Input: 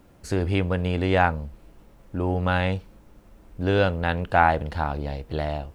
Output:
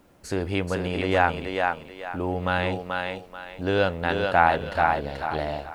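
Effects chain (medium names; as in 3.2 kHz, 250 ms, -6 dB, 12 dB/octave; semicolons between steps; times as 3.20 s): bass shelf 160 Hz -9 dB; thinning echo 434 ms, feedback 32%, high-pass 290 Hz, level -3 dB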